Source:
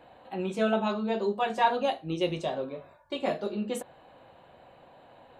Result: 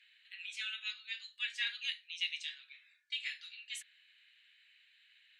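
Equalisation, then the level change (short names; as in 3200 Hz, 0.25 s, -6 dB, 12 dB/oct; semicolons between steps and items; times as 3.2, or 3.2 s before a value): steep high-pass 1900 Hz 48 dB/oct; air absorption 60 m; +3.5 dB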